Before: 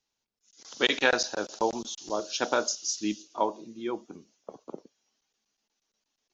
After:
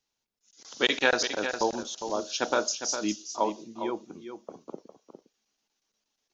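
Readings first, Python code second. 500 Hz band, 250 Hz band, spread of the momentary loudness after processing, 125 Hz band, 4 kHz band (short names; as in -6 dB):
+0.5 dB, +0.5 dB, 20 LU, +0.5 dB, +0.5 dB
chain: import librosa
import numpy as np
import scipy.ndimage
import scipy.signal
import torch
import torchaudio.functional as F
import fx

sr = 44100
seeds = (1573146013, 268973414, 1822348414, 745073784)

y = x + 10.0 ** (-9.0 / 20.0) * np.pad(x, (int(406 * sr / 1000.0), 0))[:len(x)]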